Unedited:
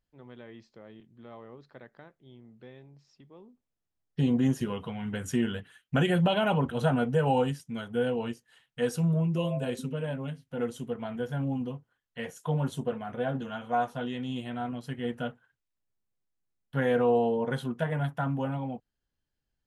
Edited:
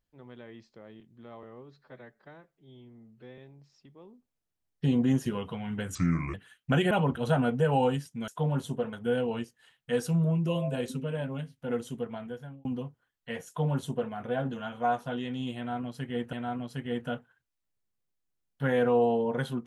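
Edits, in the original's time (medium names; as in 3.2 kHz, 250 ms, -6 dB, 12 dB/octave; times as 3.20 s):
1.43–2.73 s: stretch 1.5×
5.30–5.58 s: speed 72%
6.15–6.45 s: delete
10.88–11.54 s: fade out
12.36–13.01 s: copy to 7.82 s
14.46–15.22 s: loop, 2 plays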